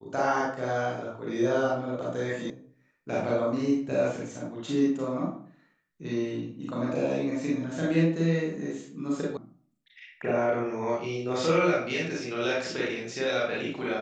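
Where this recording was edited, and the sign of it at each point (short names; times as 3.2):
2.5 sound cut off
9.37 sound cut off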